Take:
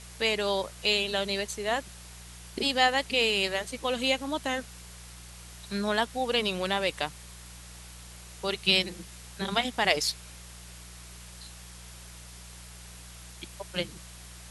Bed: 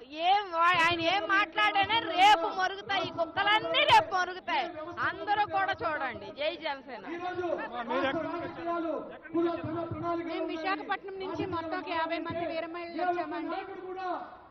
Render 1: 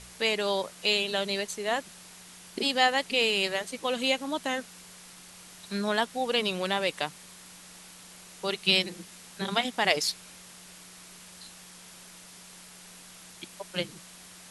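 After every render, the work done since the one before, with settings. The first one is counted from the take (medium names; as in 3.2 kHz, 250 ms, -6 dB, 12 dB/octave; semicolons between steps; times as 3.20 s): de-hum 60 Hz, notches 2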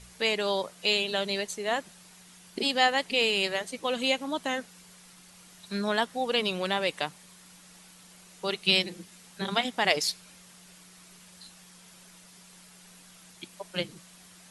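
noise reduction 6 dB, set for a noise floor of -50 dBFS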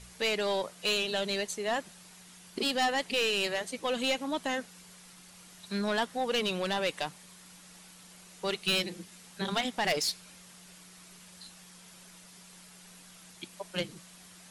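saturation -22 dBFS, distortion -10 dB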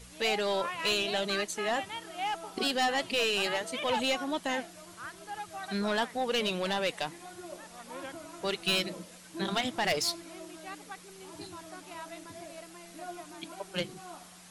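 add bed -12.5 dB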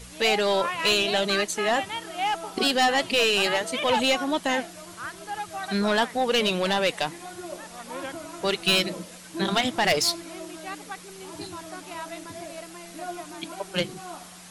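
trim +7 dB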